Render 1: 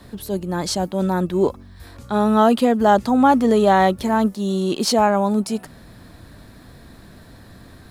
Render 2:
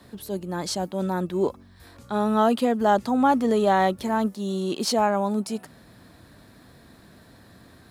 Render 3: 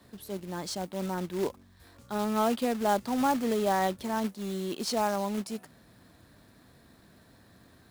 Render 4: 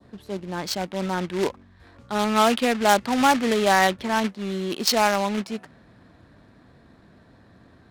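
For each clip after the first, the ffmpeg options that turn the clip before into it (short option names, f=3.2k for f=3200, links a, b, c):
-af "highpass=f=120:p=1,volume=-5dB"
-af "acrusher=bits=3:mode=log:mix=0:aa=0.000001,volume=-7dB"
-af "adynamicsmooth=sensitivity=5:basefreq=1.6k,crystalizer=i=4.5:c=0,adynamicequalizer=threshold=0.00794:dfrequency=2100:dqfactor=0.83:tfrequency=2100:tqfactor=0.83:attack=5:release=100:ratio=0.375:range=3:mode=boostabove:tftype=bell,volume=5.5dB"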